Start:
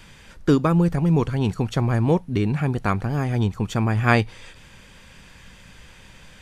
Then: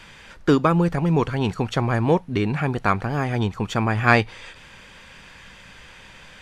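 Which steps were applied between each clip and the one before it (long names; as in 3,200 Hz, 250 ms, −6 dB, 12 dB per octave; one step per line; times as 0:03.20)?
mid-hump overdrive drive 7 dB, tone 3,300 Hz, clips at −3 dBFS
level +2.5 dB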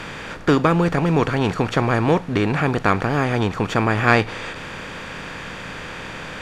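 compressor on every frequency bin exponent 0.6
level −1 dB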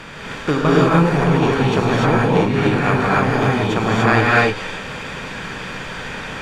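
reverb whose tail is shaped and stops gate 320 ms rising, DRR −6 dB
level −3.5 dB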